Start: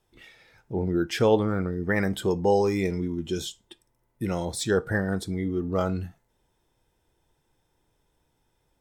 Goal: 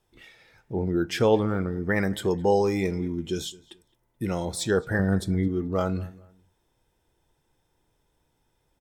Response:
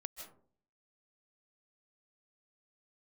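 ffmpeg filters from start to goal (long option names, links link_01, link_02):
-filter_complex "[0:a]asettb=1/sr,asplit=3[link_01][link_02][link_03];[link_01]atrim=end=4.994[link_04];[link_02]atrim=start=4.99:end=5.48,asetpts=PTS-STARTPTS,afade=type=in:duration=0.004:curve=qsin,afade=type=out:start_time=0.486:duration=0.004:curve=qsin,lowshelf=frequency=210:gain=8.5[link_05];[link_03]atrim=start=5.476[link_06];[link_04][link_05]acrossfade=duration=0.004:curve1=hsin:curve2=qsin[link_07];[link_07][link_06]acrossfade=duration=0.004:curve1=qsin:curve2=hsin,asplit=2[link_08][link_09];[link_09]adelay=215,lowpass=frequency=2900:poles=1,volume=-21.5dB,asplit=2[link_10][link_11];[link_11]adelay=215,lowpass=frequency=2900:poles=1,volume=0.3[link_12];[link_10][link_12]amix=inputs=2:normalize=0[link_13];[link_08][link_13]amix=inputs=2:normalize=0"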